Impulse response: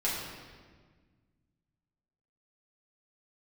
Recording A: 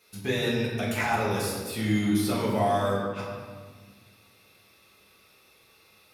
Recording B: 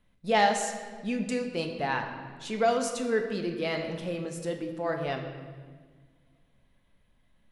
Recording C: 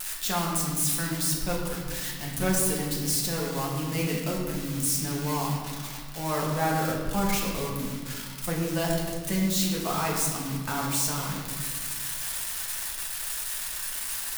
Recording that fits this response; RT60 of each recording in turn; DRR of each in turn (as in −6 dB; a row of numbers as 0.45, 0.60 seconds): A; 1.6, 1.6, 1.6 seconds; −8.0, 3.0, −3.5 decibels